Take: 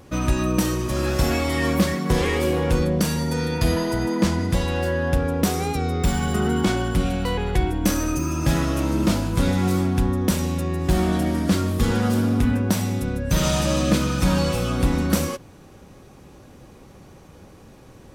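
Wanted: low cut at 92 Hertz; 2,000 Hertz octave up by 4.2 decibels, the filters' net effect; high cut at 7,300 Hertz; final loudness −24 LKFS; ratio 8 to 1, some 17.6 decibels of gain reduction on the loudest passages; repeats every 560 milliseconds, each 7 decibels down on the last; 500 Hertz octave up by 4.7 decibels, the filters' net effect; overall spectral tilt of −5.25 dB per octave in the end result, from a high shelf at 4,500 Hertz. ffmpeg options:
ffmpeg -i in.wav -af "highpass=92,lowpass=7300,equalizer=frequency=500:width_type=o:gain=5.5,equalizer=frequency=2000:width_type=o:gain=4.5,highshelf=frequency=4500:gain=3,acompressor=threshold=-32dB:ratio=8,aecho=1:1:560|1120|1680|2240|2800:0.447|0.201|0.0905|0.0407|0.0183,volume=10.5dB" out.wav

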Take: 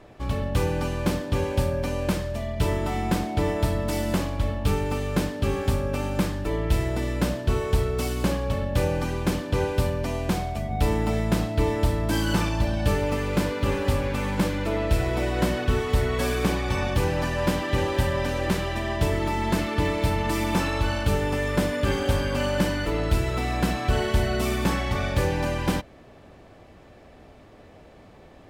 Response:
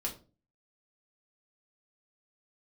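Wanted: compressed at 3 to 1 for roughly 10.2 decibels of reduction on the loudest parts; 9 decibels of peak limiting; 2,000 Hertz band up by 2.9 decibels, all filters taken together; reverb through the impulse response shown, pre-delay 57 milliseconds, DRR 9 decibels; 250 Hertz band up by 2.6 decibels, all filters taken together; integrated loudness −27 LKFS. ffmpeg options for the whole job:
-filter_complex "[0:a]equalizer=frequency=250:width_type=o:gain=3.5,equalizer=frequency=2000:width_type=o:gain=3.5,acompressor=threshold=-31dB:ratio=3,alimiter=level_in=2dB:limit=-24dB:level=0:latency=1,volume=-2dB,asplit=2[link_01][link_02];[1:a]atrim=start_sample=2205,adelay=57[link_03];[link_02][link_03]afir=irnorm=-1:irlink=0,volume=-11dB[link_04];[link_01][link_04]amix=inputs=2:normalize=0,volume=7.5dB"

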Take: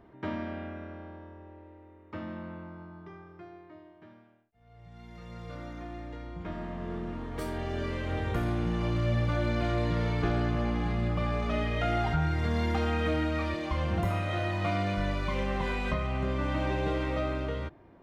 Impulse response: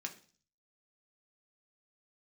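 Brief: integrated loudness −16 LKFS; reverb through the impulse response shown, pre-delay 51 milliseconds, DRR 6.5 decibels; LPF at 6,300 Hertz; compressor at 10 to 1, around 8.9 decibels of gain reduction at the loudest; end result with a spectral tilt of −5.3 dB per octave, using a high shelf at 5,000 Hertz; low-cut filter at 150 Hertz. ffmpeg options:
-filter_complex "[0:a]highpass=150,lowpass=6300,highshelf=frequency=5000:gain=-5,acompressor=threshold=-36dB:ratio=10,asplit=2[link_01][link_02];[1:a]atrim=start_sample=2205,adelay=51[link_03];[link_02][link_03]afir=irnorm=-1:irlink=0,volume=-5.5dB[link_04];[link_01][link_04]amix=inputs=2:normalize=0,volume=24dB"

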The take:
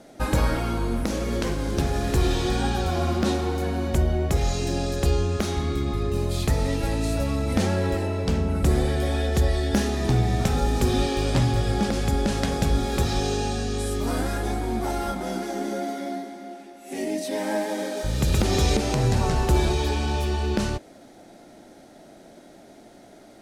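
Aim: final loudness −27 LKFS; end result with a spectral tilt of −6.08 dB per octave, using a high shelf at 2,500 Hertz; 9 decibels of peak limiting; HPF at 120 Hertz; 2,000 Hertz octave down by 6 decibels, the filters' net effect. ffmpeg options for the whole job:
ffmpeg -i in.wav -af "highpass=120,equalizer=frequency=2000:width_type=o:gain=-6,highshelf=frequency=2500:gain=-4,volume=1.5dB,alimiter=limit=-16dB:level=0:latency=1" out.wav

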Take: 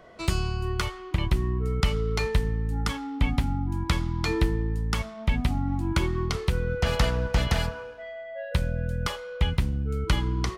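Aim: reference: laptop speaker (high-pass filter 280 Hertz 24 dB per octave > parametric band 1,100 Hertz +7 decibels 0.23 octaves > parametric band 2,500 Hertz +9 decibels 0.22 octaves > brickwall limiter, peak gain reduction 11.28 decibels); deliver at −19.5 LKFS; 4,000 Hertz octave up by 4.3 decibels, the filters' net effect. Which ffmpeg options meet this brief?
ffmpeg -i in.wav -af "highpass=frequency=280:width=0.5412,highpass=frequency=280:width=1.3066,equalizer=frequency=1100:width_type=o:width=0.23:gain=7,equalizer=frequency=2500:width_type=o:width=0.22:gain=9,equalizer=frequency=4000:width_type=o:gain=4.5,volume=13dB,alimiter=limit=-7dB:level=0:latency=1" out.wav

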